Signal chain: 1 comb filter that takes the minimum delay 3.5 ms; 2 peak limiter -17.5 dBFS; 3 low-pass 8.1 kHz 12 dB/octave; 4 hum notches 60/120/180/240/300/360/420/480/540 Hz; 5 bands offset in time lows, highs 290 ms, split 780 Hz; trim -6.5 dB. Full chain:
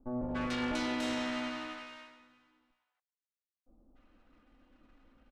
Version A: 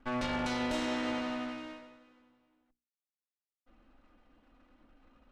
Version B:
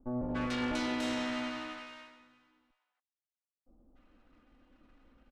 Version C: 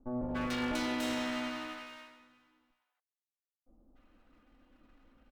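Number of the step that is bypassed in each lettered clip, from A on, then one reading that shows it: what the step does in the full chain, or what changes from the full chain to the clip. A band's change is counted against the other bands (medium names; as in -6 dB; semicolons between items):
5, echo-to-direct 7.5 dB to none; 4, 125 Hz band +2.0 dB; 3, 8 kHz band +2.0 dB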